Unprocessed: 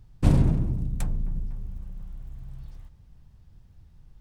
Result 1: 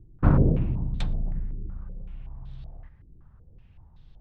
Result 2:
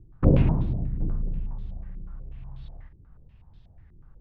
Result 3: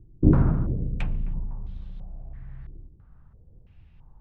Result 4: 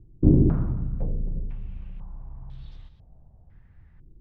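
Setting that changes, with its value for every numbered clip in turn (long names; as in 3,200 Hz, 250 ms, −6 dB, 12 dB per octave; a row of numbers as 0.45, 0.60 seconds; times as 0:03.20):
low-pass on a step sequencer, speed: 5.3, 8.2, 3, 2 Hertz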